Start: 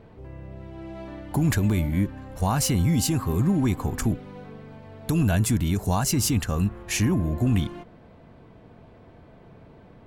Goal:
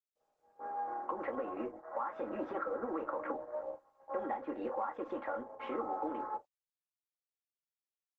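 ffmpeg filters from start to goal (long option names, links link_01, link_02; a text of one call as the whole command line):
ffmpeg -i in.wav -filter_complex "[0:a]highpass=frequency=410:width=0.5412,highpass=frequency=410:width=1.3066,asplit=2[link_01][link_02];[link_02]asoftclip=type=hard:threshold=-29dB,volume=-3dB[link_03];[link_01][link_03]amix=inputs=2:normalize=0,agate=range=-43dB:threshold=-42dB:ratio=16:detection=peak,afwtdn=0.0126,lowpass=frequency=1100:width=0.5412,lowpass=frequency=1100:width=1.3066,aecho=1:1:4.5:0.82,acompressor=threshold=-34dB:ratio=6,asetrate=54243,aresample=44100,acontrast=54,asplit=2[link_04][link_05];[link_05]aecho=0:1:13|27|43:0.398|0.2|0.2[link_06];[link_04][link_06]amix=inputs=2:normalize=0,volume=-7dB" -ar 48000 -c:a libopus -b:a 12k out.opus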